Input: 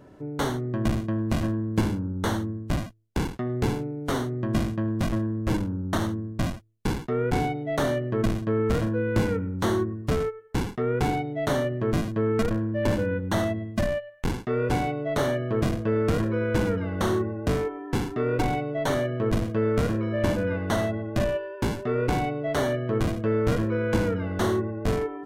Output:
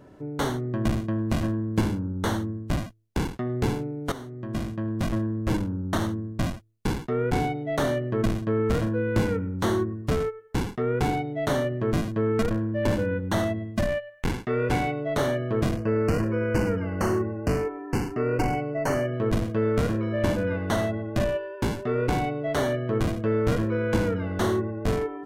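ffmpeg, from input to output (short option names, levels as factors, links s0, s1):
-filter_complex "[0:a]asettb=1/sr,asplit=3[s0][s1][s2];[s0]atrim=end=13.894[s3];[s1]atrim=start=13.89:end=15,asetpts=PTS-STARTPTS,afade=t=in:d=0.004:c=qsin,afade=t=out:st=1.106:d=0.004:c=qsin,equalizer=f=2100:w=1.5:g=4[s4];[s2]atrim=start=14.996[s5];[s3][s4]acrossfade=d=0.004:c1=hsin:c2=qsin[s6];[s6][s5]acrossfade=d=0.004:c1=qsin:c2=hsin,asettb=1/sr,asplit=3[s7][s8][s9];[s7]atrim=end=15.774[s10];[s8]atrim=start=15.77:end=19.14,asetpts=PTS-STARTPTS,afade=t=in:d=0.004:c=qsin,afade=t=out:st=3.366:d=0.004:c=qsin,asuperstop=centerf=3600:order=12:qfactor=2.8[s11];[s9]atrim=start=19.136[s12];[s10][s11]acrossfade=d=0.004:c1=hsin:c2=qsin[s13];[s13][s12]acrossfade=d=0.004:c1=qsin:c2=hsin,asplit=2[s14][s15];[s14]atrim=end=4.12,asetpts=PTS-STARTPTS,afade=t=out:st=4.116:d=0.004:c=hsin:silence=0.223872[s16];[s15]atrim=start=4.12,asetpts=PTS-STARTPTS,afade=t=in:d=1.06:silence=0.223872[s17];[s16][s17]concat=n=2:v=0:a=1"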